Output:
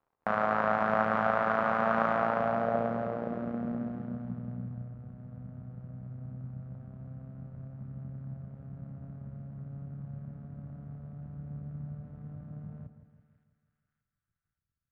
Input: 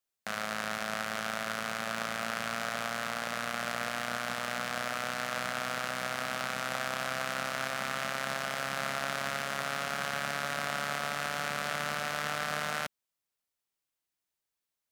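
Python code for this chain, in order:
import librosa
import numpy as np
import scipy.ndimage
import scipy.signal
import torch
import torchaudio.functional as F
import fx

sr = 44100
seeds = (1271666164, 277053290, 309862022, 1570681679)

y = fx.dmg_crackle(x, sr, seeds[0], per_s=75.0, level_db=-59.0)
y = fx.echo_split(y, sr, split_hz=1500.0, low_ms=165, high_ms=572, feedback_pct=52, wet_db=-10.5)
y = fx.filter_sweep_lowpass(y, sr, from_hz=1000.0, to_hz=110.0, start_s=2.11, end_s=4.96, q=1.5)
y = y * 10.0 ** (8.0 / 20.0)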